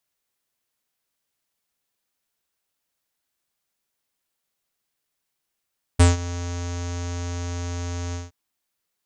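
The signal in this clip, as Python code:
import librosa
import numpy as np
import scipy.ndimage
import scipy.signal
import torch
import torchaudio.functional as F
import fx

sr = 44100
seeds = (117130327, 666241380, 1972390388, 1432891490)

y = fx.sub_voice(sr, note=41, wave='square', cutoff_hz=6600.0, q=5.5, env_oct=0.5, env_s=0.13, attack_ms=14.0, decay_s=0.16, sustain_db=-18.0, release_s=0.17, note_s=2.15, slope=24)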